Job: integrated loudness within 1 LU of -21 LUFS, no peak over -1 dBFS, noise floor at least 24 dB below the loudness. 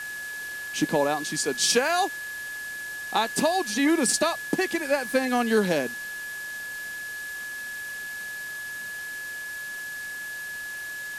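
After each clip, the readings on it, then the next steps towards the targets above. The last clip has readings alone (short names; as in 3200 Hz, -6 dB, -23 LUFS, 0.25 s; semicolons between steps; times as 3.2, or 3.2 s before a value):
steady tone 1700 Hz; tone level -33 dBFS; noise floor -36 dBFS; noise floor target -52 dBFS; loudness -27.5 LUFS; peak -11.0 dBFS; loudness target -21.0 LUFS
-> notch 1700 Hz, Q 30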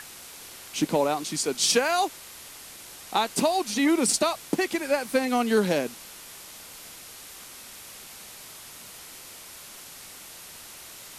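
steady tone none; noise floor -45 dBFS; noise floor target -49 dBFS
-> denoiser 6 dB, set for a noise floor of -45 dBFS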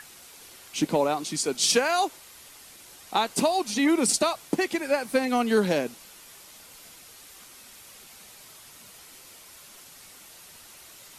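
noise floor -49 dBFS; loudness -25.0 LUFS; peak -12.0 dBFS; loudness target -21.0 LUFS
-> gain +4 dB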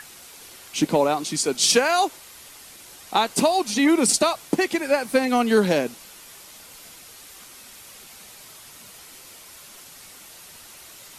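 loudness -21.0 LUFS; peak -8.0 dBFS; noise floor -45 dBFS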